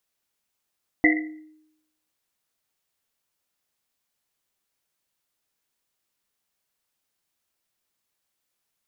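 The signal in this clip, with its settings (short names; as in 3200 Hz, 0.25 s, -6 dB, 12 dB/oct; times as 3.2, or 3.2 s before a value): Risset drum, pitch 310 Hz, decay 0.83 s, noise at 2000 Hz, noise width 160 Hz, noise 45%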